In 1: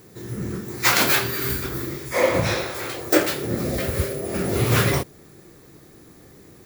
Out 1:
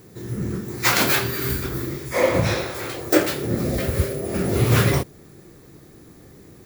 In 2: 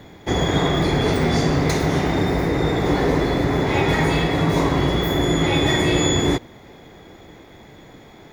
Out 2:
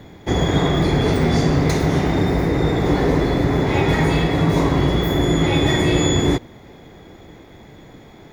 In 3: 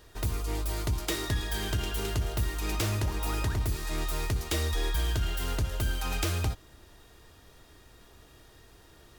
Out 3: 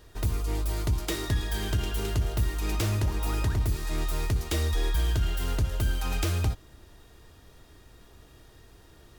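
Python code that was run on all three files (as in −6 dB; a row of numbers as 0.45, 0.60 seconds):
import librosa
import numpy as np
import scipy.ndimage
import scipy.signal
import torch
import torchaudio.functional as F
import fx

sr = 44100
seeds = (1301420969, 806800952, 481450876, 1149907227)

y = fx.low_shelf(x, sr, hz=370.0, db=4.5)
y = y * 10.0 ** (-1.0 / 20.0)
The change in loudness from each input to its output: +0.5, +1.5, +2.0 LU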